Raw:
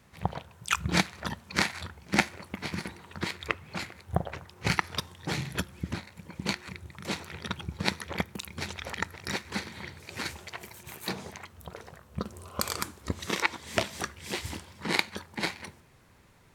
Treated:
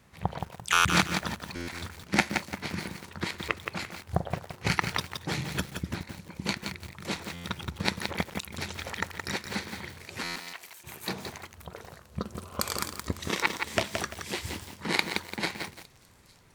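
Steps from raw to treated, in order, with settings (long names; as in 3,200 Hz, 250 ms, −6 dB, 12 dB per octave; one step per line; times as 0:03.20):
0:10.30–0:10.84: high-pass filter 1,500 Hz 6 dB per octave
on a send: delay with a high-pass on its return 859 ms, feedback 62%, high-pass 5,300 Hz, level −19.5 dB
on the sum: buffer that repeats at 0:00.72/0:01.55/0:07.33/0:10.23/0:15.25, samples 512, times 10
feedback echo at a low word length 171 ms, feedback 35%, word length 7 bits, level −5.5 dB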